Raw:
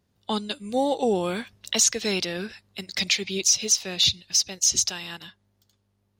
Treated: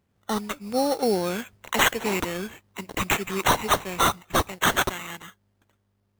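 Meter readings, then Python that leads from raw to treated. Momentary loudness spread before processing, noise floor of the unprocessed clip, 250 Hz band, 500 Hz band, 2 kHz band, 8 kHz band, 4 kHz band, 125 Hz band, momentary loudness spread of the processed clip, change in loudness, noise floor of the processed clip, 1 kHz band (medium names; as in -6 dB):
14 LU, -71 dBFS, +1.0 dB, +1.5 dB, +6.5 dB, -10.0 dB, -5.5 dB, +4.0 dB, 13 LU, -2.0 dB, -71 dBFS, +8.5 dB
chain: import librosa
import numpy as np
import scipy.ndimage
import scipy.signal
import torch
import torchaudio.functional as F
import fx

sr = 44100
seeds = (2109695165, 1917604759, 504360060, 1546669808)

y = fx.sample_hold(x, sr, seeds[0], rate_hz=4900.0, jitter_pct=0)
y = fx.mod_noise(y, sr, seeds[1], snr_db=23)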